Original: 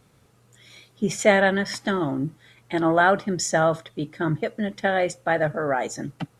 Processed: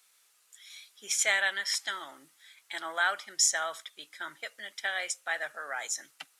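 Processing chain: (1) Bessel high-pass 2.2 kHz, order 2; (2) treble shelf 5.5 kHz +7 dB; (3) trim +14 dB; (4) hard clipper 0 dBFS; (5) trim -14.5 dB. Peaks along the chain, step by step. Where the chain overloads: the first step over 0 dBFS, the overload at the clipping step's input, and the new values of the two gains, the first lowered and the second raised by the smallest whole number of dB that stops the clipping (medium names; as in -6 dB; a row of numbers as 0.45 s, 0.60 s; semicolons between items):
-14.0 dBFS, -10.5 dBFS, +3.5 dBFS, 0.0 dBFS, -14.5 dBFS; step 3, 3.5 dB; step 3 +10 dB, step 5 -10.5 dB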